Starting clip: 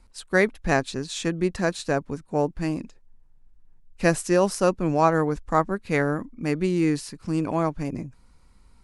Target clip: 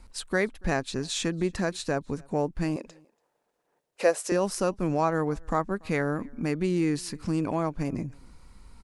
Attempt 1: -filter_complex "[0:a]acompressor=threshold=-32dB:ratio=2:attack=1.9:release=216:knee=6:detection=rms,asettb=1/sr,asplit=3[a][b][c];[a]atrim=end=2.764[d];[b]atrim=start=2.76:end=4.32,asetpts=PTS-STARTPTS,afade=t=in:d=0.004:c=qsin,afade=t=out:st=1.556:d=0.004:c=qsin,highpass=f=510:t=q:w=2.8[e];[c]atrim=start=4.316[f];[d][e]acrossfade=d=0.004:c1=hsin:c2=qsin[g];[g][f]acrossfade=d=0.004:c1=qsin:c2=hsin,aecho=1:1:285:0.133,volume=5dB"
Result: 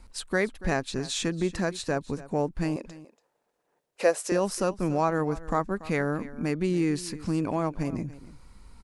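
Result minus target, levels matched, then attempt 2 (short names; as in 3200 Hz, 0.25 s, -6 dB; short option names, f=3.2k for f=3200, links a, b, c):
echo-to-direct +10.5 dB
-filter_complex "[0:a]acompressor=threshold=-32dB:ratio=2:attack=1.9:release=216:knee=6:detection=rms,asettb=1/sr,asplit=3[a][b][c];[a]atrim=end=2.764[d];[b]atrim=start=2.76:end=4.32,asetpts=PTS-STARTPTS,afade=t=in:d=0.004:c=qsin,afade=t=out:st=1.556:d=0.004:c=qsin,highpass=f=510:t=q:w=2.8[e];[c]atrim=start=4.316[f];[d][e]acrossfade=d=0.004:c1=hsin:c2=qsin[g];[g][f]acrossfade=d=0.004:c1=qsin:c2=hsin,aecho=1:1:285:0.0398,volume=5dB"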